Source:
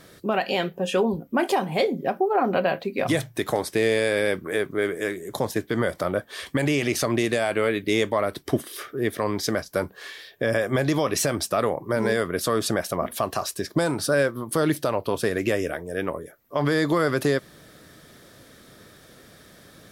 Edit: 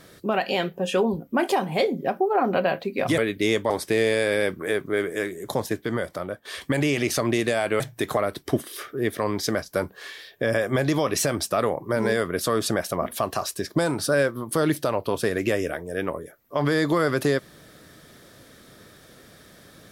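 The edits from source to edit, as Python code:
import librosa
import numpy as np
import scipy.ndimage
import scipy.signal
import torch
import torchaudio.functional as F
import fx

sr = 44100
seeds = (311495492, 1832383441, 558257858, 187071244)

y = fx.edit(x, sr, fx.swap(start_s=3.18, length_s=0.37, other_s=7.65, other_length_s=0.52),
    fx.fade_out_to(start_s=5.43, length_s=0.87, floor_db=-9.0), tone=tone)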